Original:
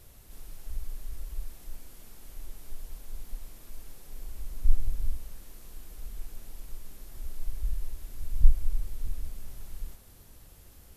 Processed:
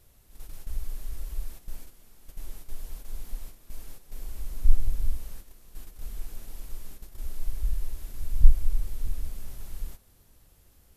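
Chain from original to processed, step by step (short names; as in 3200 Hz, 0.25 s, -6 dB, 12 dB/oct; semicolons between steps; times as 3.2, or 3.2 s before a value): gate -40 dBFS, range -9 dB; gain +3 dB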